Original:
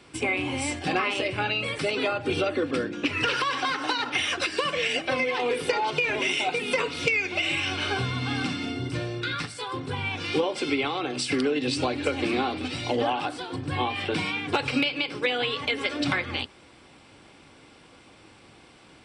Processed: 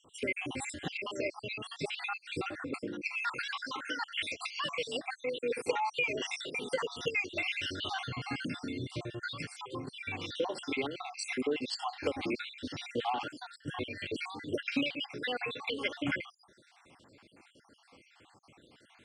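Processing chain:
time-frequency cells dropped at random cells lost 61%
high-pass filter 90 Hz 6 dB per octave
level −5 dB

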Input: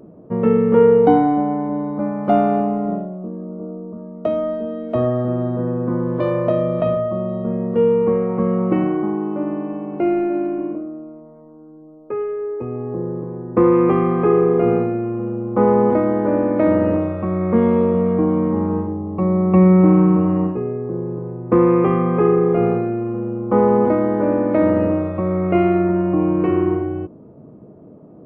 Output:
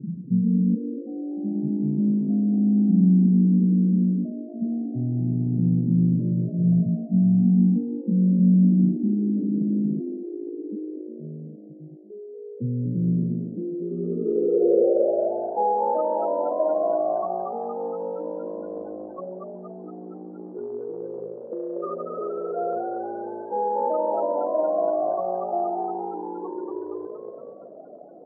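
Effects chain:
gate on every frequency bin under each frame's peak −10 dB strong
parametric band 540 Hz −6.5 dB 1.9 octaves
reversed playback
downward compressor 12 to 1, threshold −30 dBFS, peak gain reduction 18.5 dB
reversed playback
high-pass filter sweep 190 Hz → 660 Hz, 0:12.88–0:15.10
on a send: echo with shifted repeats 234 ms, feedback 57%, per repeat +54 Hz, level −4.5 dB
on the sum: low-pass filter sweep 150 Hz → 1,600 Hz, 0:13.88–0:16.06
level +8 dB

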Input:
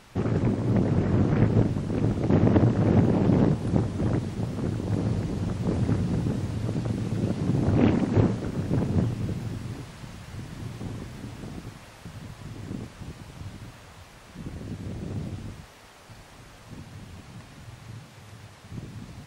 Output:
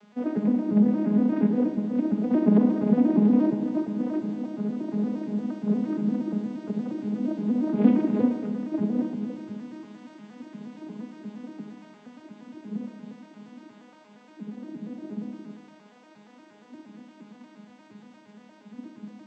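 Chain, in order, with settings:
vocoder with an arpeggio as carrier minor triad, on G#3, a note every 117 ms
convolution reverb RT60 1.3 s, pre-delay 25 ms, DRR 5.5 dB

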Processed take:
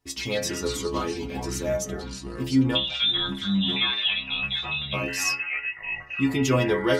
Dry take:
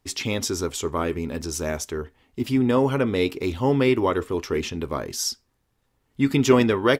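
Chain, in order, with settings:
0:02.75–0:04.93: voice inversion scrambler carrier 3,800 Hz
delay with pitch and tempo change per echo 88 ms, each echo −5 semitones, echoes 3, each echo −6 dB
stiff-string resonator 63 Hz, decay 0.49 s, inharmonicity 0.008
level +6.5 dB

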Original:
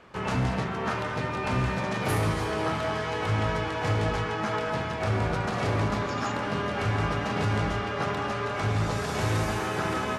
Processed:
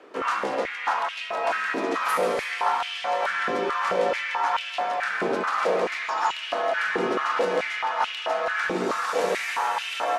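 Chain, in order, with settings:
frequency shifter +78 Hz
high-pass on a step sequencer 4.6 Hz 370–2,800 Hz

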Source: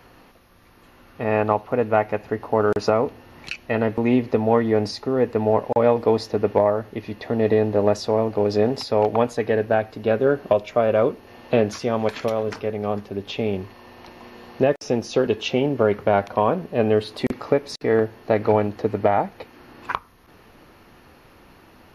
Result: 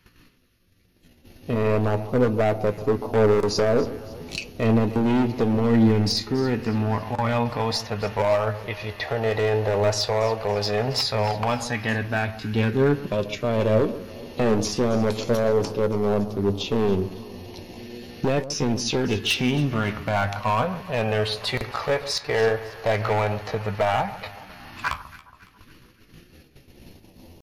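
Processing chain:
in parallel at 0 dB: brickwall limiter −13.5 dBFS, peak gain reduction 9 dB
on the sum: all-pass phaser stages 2, 0.098 Hz, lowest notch 250–1,700 Hz
noise gate −45 dBFS, range −15 dB
hard clipping −18 dBFS, distortion −9 dB
tempo change 0.8×
on a send: delay that swaps between a low-pass and a high-pass 139 ms, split 1,200 Hz, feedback 65%, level −13.5 dB
on the sum: flanger 0.38 Hz, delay 5.3 ms, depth 8.5 ms, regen +70%
level +5.5 dB

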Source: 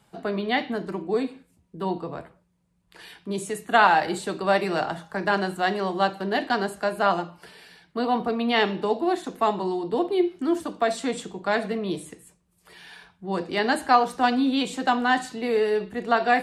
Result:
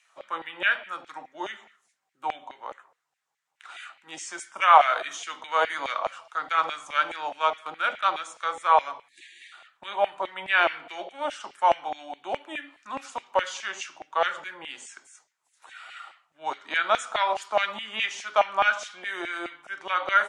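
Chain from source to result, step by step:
time-frequency box erased 0:07.36–0:07.71, 470–2,000 Hz
auto-filter high-pass saw down 5.9 Hz 880–2,800 Hz
change of speed 0.81×
level −1 dB

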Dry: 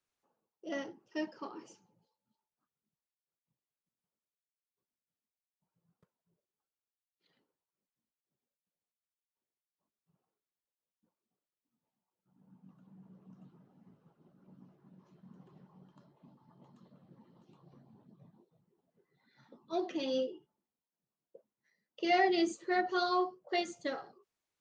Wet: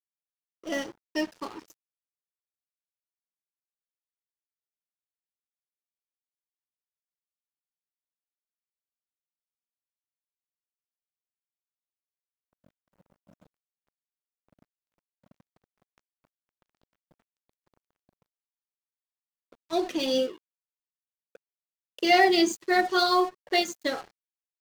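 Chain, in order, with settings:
0:14.60–0:16.68: high-pass filter 110 Hz 6 dB per octave
dead-zone distortion −53 dBFS
high-shelf EQ 3,500 Hz +9 dB
level +8 dB

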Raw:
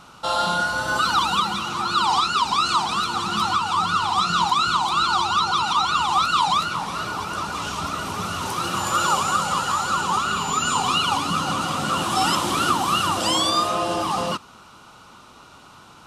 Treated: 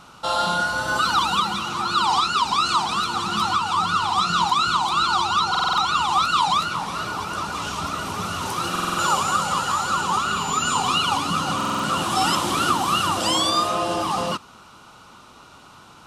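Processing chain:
buffer that repeats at 0:05.50/0:08.71/0:11.56, samples 2,048, times 5

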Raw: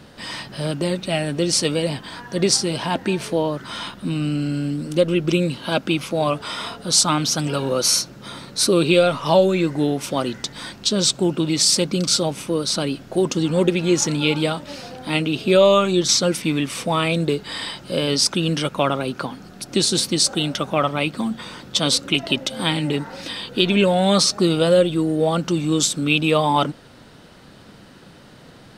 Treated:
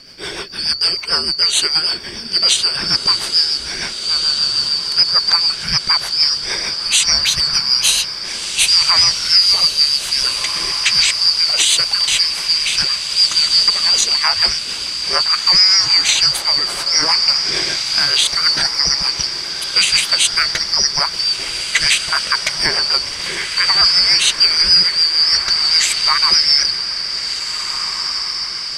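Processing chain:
band-splitting scrambler in four parts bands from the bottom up 2341
rotating-speaker cabinet horn 6.7 Hz
feedback delay with all-pass diffusion 1,778 ms, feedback 56%, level −9 dB
boost into a limiter +8.5 dB
level −1 dB

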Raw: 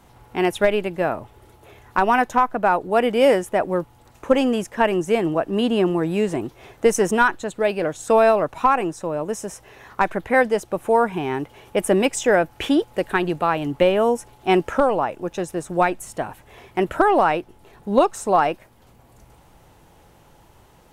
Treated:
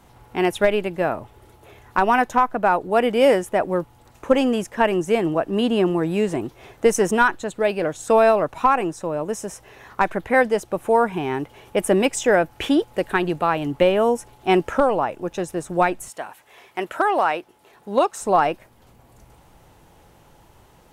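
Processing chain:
0:16.08–0:18.20: high-pass filter 1,100 Hz → 390 Hz 6 dB per octave

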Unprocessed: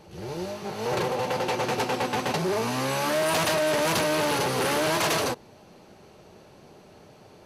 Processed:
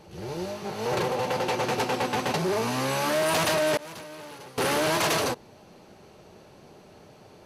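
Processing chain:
0:03.77–0:04.58: downward expander −13 dBFS

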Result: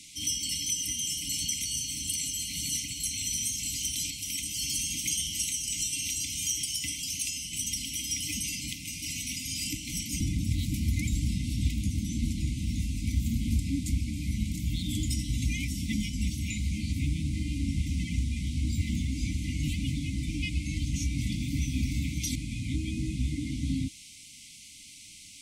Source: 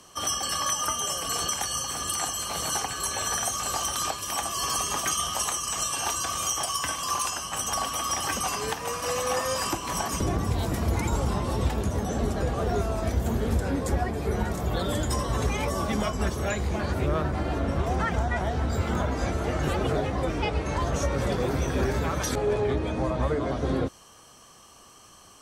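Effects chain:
noise in a band 1,800–9,600 Hz −49 dBFS
brick-wall band-stop 320–2,000 Hz
level −1.5 dB

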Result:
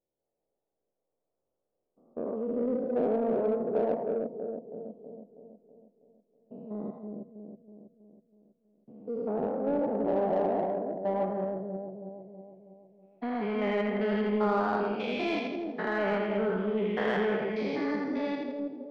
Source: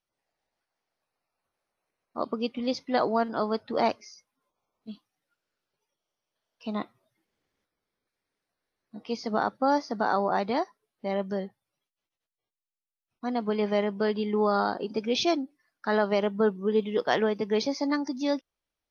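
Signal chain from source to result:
spectrum averaged block by block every 200 ms
low-pass filter sweep 490 Hz → 2,300 Hz, 0:10.07–0:12.69
echo with a time of its own for lows and highs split 650 Hz, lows 323 ms, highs 82 ms, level −3.5 dB
in parallel at −3.5 dB: soft clipping −26.5 dBFS, distortion −10 dB
on the sum: level −5.5 dB

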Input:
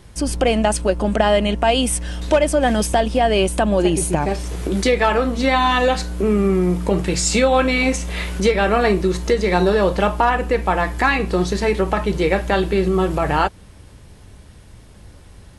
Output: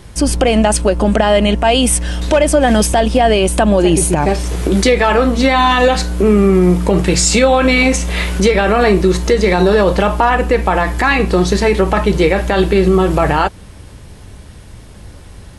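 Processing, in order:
brickwall limiter −9.5 dBFS, peak gain reduction 7 dB
level +7.5 dB

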